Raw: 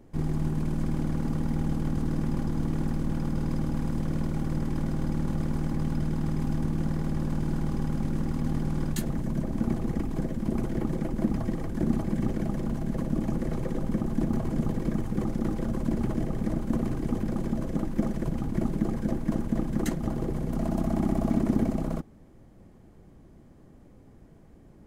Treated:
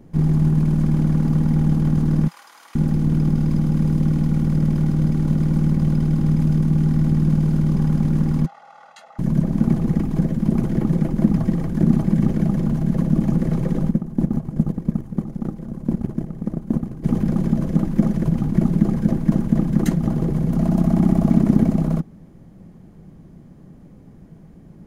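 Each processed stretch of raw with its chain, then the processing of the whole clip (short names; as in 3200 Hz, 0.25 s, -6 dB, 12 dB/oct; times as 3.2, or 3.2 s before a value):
2.28–7.76 notch 1700 Hz, Q 22 + bands offset in time highs, lows 0.47 s, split 930 Hz
8.46–9.19 ladder high-pass 770 Hz, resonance 55% + air absorption 110 m + comb 1.5 ms, depth 83%
13.91–17.04 bell 3100 Hz -4 dB 2.5 oct + gate -26 dBFS, range -12 dB
whole clip: bell 170 Hz +11 dB 0.75 oct; notch 7900 Hz, Q 12; gain +4 dB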